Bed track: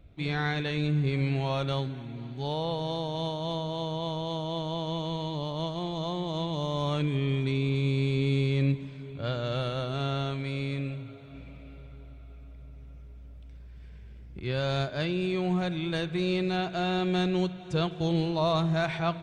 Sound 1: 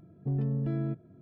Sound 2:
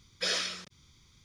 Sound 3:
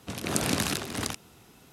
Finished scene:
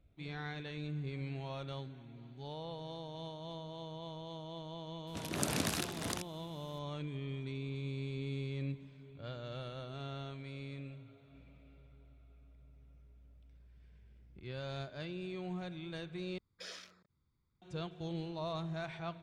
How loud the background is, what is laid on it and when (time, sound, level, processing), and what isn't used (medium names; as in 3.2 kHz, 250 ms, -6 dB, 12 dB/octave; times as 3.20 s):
bed track -13.5 dB
5.07 s: add 3 -7.5 dB
16.38 s: replace with 2 -16.5 dB + local Wiener filter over 15 samples
not used: 1